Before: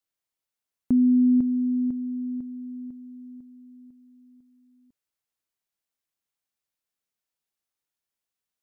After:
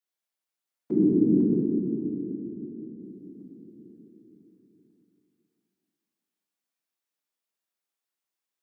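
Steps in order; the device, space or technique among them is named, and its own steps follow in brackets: 1.61–3.01 s: inverse Chebyshev low-pass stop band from 510 Hz, stop band 40 dB; whispering ghost (whisper effect; high-pass 210 Hz 12 dB/octave; reverberation RT60 2.7 s, pre-delay 5 ms, DRR -3.5 dB); trim -5 dB

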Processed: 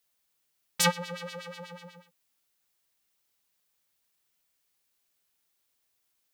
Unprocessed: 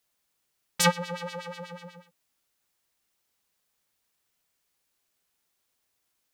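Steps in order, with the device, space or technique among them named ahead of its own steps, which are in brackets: 1.08–1.54 s: band-stop 890 Hz, Q 13; presence and air boost (peaking EQ 3.5 kHz +2.5 dB 1.8 oct; treble shelf 11 kHz +7 dB); trim -3.5 dB

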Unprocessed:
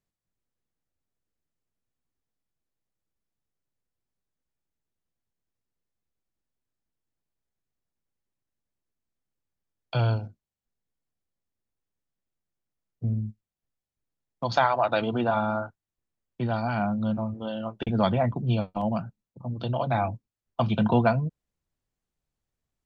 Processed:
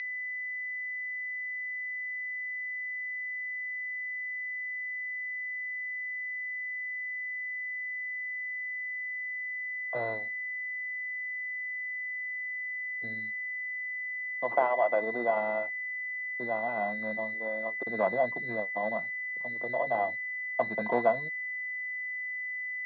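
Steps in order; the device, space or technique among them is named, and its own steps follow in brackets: toy sound module (decimation joined by straight lines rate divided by 8×; class-D stage that switches slowly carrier 2 kHz; cabinet simulation 790–4100 Hz, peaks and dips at 850 Hz -8 dB, 1.3 kHz -8 dB, 2 kHz -9 dB, 3.1 kHz -7 dB); trim +8 dB

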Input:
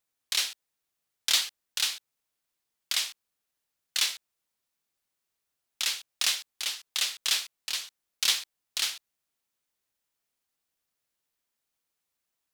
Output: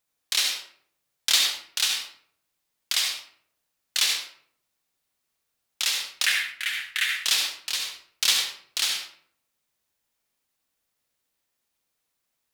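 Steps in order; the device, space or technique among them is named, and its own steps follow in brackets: 6.26–7.22 s: FFT filter 150 Hz 0 dB, 520 Hz -16 dB, 1.1 kHz -7 dB, 1.7 kHz +13 dB, 5.1 kHz -12 dB, 9.9 kHz -5 dB; bathroom (reverberation RT60 0.60 s, pre-delay 62 ms, DRR 2 dB); trim +3 dB

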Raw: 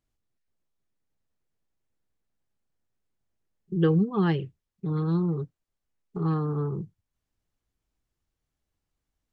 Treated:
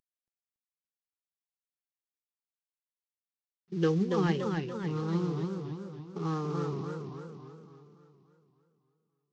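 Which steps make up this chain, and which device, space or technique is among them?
early wireless headset (high-pass 250 Hz 6 dB/octave; CVSD coder 32 kbps); modulated delay 283 ms, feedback 53%, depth 148 cents, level -4.5 dB; trim -2 dB

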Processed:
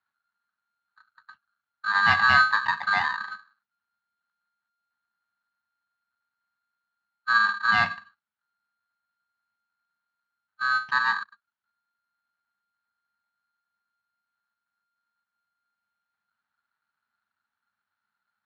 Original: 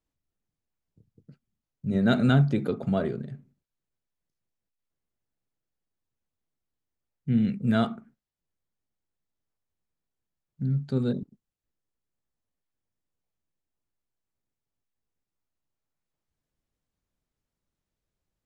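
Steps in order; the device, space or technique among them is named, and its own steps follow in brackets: ring modulator pedal into a guitar cabinet (polarity switched at an audio rate 1.4 kHz; cabinet simulation 90–4000 Hz, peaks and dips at 97 Hz +8 dB, 210 Hz +9 dB, 330 Hz -6 dB, 500 Hz -9 dB, 880 Hz +7 dB, 1.7 kHz +4 dB)

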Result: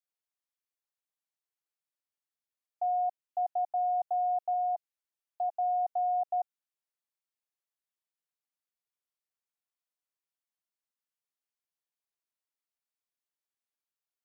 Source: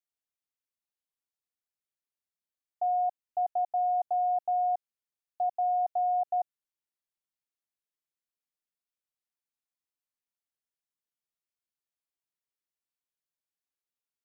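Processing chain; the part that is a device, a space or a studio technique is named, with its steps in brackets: filter by subtraction (in parallel: low-pass 720 Hz 12 dB/octave + polarity flip); 4.53–5.51 s: on the sum: comb 6 ms, depth 43%; trim -3.5 dB

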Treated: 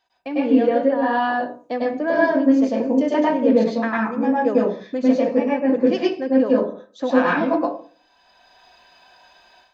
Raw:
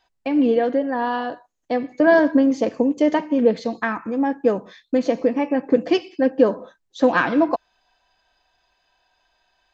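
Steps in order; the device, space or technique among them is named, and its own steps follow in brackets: far laptop microphone (reverberation RT60 0.40 s, pre-delay 97 ms, DRR -6 dB; high-pass 150 Hz 6 dB/octave; level rider gain up to 13 dB); trim -4.5 dB

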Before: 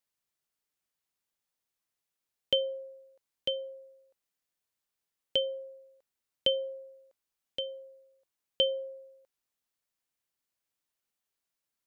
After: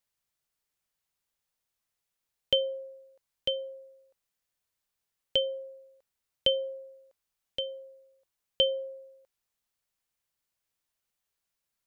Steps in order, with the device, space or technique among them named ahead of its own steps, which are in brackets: low shelf boost with a cut just above (bass shelf 98 Hz +6.5 dB; peaking EQ 290 Hz -4 dB 0.82 oct); trim +2 dB

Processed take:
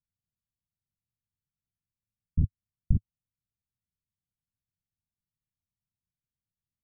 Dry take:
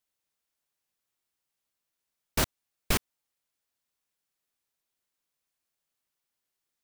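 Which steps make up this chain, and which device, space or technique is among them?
the neighbour's flat through the wall (low-pass 190 Hz 24 dB/octave; peaking EQ 100 Hz +6 dB 0.92 oct); trim +6 dB

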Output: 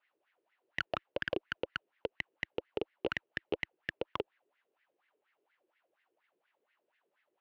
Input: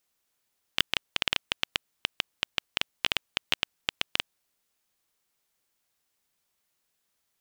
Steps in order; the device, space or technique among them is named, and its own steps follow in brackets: wah-wah guitar rig (wah-wah 4.2 Hz 380–2000 Hz, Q 6; valve stage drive 42 dB, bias 0.4; cabinet simulation 89–4000 Hz, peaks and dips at 330 Hz +6 dB, 580 Hz +3 dB, 1.2 kHz -3 dB, 2.8 kHz +5 dB); trim +18 dB

